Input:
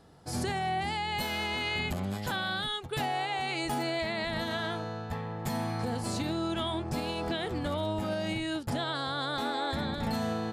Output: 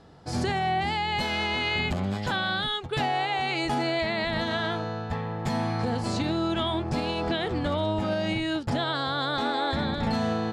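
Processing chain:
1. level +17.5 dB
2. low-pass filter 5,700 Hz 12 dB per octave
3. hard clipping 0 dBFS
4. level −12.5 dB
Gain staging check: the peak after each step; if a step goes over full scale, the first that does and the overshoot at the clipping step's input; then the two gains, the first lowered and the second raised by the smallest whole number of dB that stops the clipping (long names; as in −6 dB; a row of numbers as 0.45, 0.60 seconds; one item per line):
−4.5, −4.5, −4.5, −17.0 dBFS
no step passes full scale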